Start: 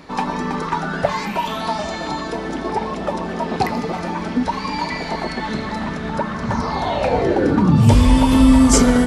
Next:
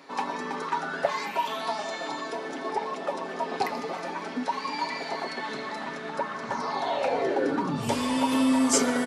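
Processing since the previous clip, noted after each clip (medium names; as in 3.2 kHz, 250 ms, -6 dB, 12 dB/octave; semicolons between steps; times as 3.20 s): high-pass 350 Hz 12 dB/octave; comb 7.3 ms, depth 39%; trim -7 dB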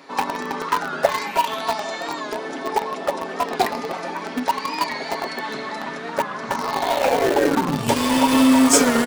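in parallel at -8 dB: bit crusher 4-bit; on the sum: warped record 45 rpm, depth 100 cents; trim +5 dB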